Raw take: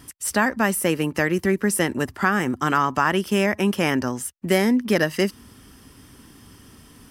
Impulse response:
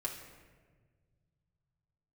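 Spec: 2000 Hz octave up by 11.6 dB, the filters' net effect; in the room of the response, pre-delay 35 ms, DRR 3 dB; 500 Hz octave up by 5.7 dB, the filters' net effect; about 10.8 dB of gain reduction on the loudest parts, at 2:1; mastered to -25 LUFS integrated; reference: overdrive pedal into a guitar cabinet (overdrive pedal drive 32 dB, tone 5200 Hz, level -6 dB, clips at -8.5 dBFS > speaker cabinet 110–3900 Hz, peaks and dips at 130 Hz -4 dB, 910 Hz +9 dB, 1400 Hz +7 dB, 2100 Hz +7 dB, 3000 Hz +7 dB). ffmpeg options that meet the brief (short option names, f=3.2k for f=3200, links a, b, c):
-filter_complex "[0:a]equalizer=f=500:t=o:g=6.5,equalizer=f=2k:t=o:g=6.5,acompressor=threshold=-31dB:ratio=2,asplit=2[a][b];[1:a]atrim=start_sample=2205,adelay=35[c];[b][c]afir=irnorm=-1:irlink=0,volume=-4dB[d];[a][d]amix=inputs=2:normalize=0,asplit=2[e][f];[f]highpass=f=720:p=1,volume=32dB,asoftclip=type=tanh:threshold=-8.5dB[g];[e][g]amix=inputs=2:normalize=0,lowpass=f=5.2k:p=1,volume=-6dB,highpass=110,equalizer=f=130:t=q:w=4:g=-4,equalizer=f=910:t=q:w=4:g=9,equalizer=f=1.4k:t=q:w=4:g=7,equalizer=f=2.1k:t=q:w=4:g=7,equalizer=f=3k:t=q:w=4:g=7,lowpass=f=3.9k:w=0.5412,lowpass=f=3.9k:w=1.3066,volume=-13dB"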